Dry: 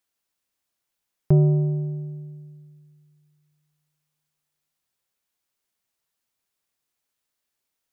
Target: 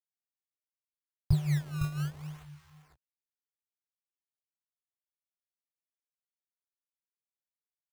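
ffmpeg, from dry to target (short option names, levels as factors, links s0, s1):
-af "anlmdn=2.51,aresample=16000,acrusher=bits=6:mix=0:aa=0.000001,aresample=44100,lowshelf=f=130:t=q:w=1.5:g=7,flanger=delay=17:depth=6.5:speed=2.1,firequalizer=gain_entry='entry(130,0);entry(210,-26);entry(600,-17);entry(880,-4);entry(1400,-5);entry(2600,-4)':delay=0.05:min_phase=1,aecho=1:1:507:0.355,acrusher=samples=19:mix=1:aa=0.000001:lfo=1:lforange=30.4:lforate=0.67,volume=0.891"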